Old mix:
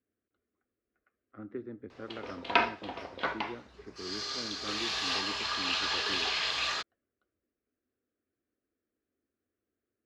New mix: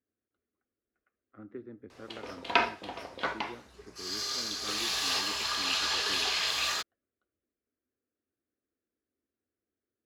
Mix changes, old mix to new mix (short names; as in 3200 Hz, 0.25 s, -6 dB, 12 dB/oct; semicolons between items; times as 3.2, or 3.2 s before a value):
speech -3.5 dB; background: remove LPF 4600 Hz 12 dB/oct